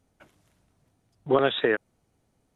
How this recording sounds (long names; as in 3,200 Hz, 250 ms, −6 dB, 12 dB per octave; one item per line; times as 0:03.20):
background noise floor −72 dBFS
spectral slope −2.5 dB per octave